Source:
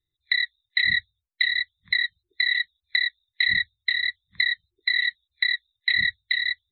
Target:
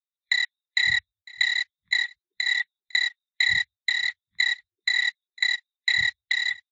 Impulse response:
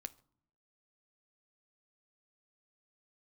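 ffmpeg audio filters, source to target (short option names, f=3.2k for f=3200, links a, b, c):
-filter_complex "[0:a]asettb=1/sr,asplit=3[a][b][c];[a]atrim=end=4.944[d];[b]atrim=start=4.94:end=5.97,asetpts=PTS-STARTPTS,afade=t=in:d=0.004:c=qsin,afade=t=out:st=1.026:d=0.004:c=qsin,bandreject=f=3.1k:w=24[e];[c]atrim=start=5.966[f];[d][e]acrossfade=d=0.004:c1=hsin:c2=qsin[g];[g][f]acrossfade=d=0.004:c1=qsin:c2=hsin,afwtdn=0.0251,asplit=3[h][i][j];[h]afade=t=out:st=2.02:d=0.02[k];[i]acompressor=threshold=-23dB:ratio=6,afade=t=in:st=2.02:d=0.02,afade=t=out:st=2.45:d=0.02[l];[j]afade=t=in:st=2.45:d=0.02[m];[k][l][m]amix=inputs=3:normalize=0,aecho=1:1:503:0.075" -ar 32000 -c:a libvorbis -b:a 64k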